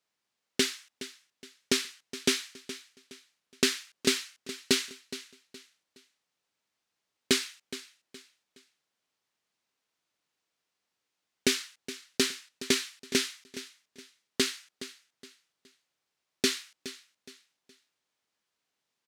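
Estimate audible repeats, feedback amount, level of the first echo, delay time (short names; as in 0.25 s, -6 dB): 3, 33%, -14.5 dB, 0.418 s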